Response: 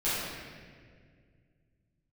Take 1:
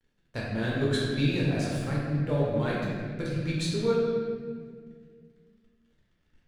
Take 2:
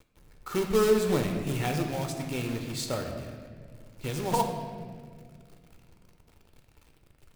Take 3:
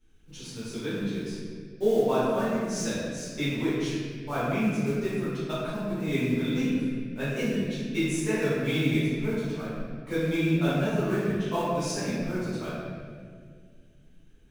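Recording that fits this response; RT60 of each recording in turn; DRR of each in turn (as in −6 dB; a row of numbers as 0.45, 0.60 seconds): 3; 1.9, 2.0, 1.9 seconds; −6.5, 3.5, −13.0 decibels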